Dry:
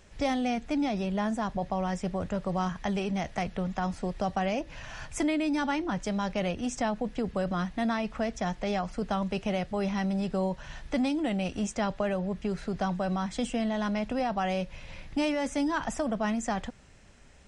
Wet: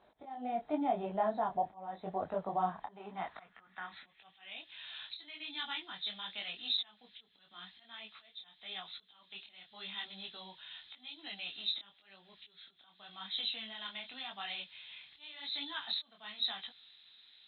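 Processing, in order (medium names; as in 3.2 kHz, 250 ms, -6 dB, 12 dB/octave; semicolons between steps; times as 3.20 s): knee-point frequency compression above 3.1 kHz 4:1; peaking EQ 540 Hz -11 dB 0.28 oct; slow attack 440 ms; band-pass sweep 680 Hz -> 4 kHz, 2.71–4.79 s; detune thickener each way 31 cents; trim +8.5 dB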